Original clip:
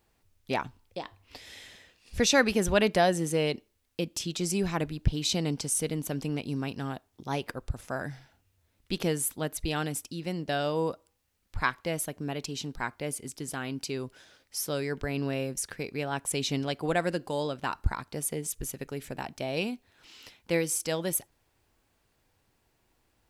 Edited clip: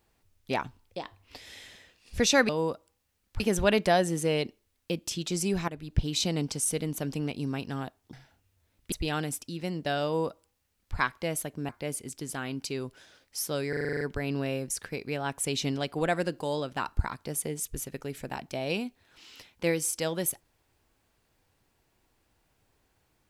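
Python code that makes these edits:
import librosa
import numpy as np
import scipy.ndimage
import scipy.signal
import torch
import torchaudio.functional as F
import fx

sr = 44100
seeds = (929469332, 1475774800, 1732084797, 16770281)

y = fx.edit(x, sr, fx.fade_in_from(start_s=4.77, length_s=0.33, floor_db=-14.5),
    fx.cut(start_s=7.22, length_s=0.92),
    fx.cut(start_s=8.93, length_s=0.62),
    fx.duplicate(start_s=10.68, length_s=0.91, to_s=2.49),
    fx.cut(start_s=12.32, length_s=0.56),
    fx.stutter(start_s=14.88, slice_s=0.04, count=9), tone=tone)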